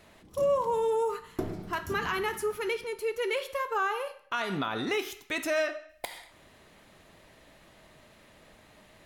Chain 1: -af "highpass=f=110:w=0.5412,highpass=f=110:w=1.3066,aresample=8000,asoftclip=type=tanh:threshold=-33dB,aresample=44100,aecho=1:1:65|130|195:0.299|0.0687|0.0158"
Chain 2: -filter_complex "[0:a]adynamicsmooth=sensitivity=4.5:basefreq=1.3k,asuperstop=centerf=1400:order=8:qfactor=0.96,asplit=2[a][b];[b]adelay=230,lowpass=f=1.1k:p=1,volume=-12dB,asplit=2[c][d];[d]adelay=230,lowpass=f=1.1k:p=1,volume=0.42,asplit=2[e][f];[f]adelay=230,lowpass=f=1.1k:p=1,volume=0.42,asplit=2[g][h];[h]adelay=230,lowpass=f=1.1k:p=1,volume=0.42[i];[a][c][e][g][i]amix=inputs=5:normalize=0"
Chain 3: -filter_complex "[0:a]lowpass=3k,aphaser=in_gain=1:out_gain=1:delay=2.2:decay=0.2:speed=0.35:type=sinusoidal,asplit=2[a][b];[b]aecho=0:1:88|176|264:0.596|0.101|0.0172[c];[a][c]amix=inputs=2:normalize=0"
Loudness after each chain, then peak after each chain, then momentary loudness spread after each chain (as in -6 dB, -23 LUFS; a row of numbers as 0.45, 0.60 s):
-37.0, -33.0, -29.5 LUFS; -27.5, -19.0, -14.5 dBFS; 22, 11, 9 LU